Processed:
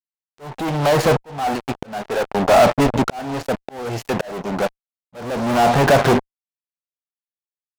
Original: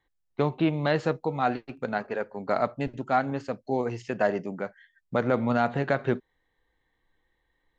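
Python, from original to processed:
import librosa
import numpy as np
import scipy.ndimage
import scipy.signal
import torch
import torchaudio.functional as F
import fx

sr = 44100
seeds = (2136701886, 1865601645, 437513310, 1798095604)

y = fx.fuzz(x, sr, gain_db=43.0, gate_db=-43.0)
y = fx.peak_eq(y, sr, hz=760.0, db=7.5, octaves=0.88)
y = fx.auto_swell(y, sr, attack_ms=792.0)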